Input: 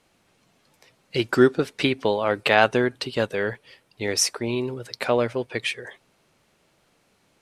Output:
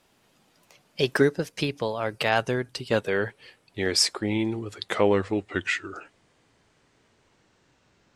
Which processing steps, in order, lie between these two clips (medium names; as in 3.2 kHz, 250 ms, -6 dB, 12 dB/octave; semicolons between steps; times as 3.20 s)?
gliding tape speed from 119% -> 63%; time-frequency box 1.22–2.91 s, 210–4600 Hz -6 dB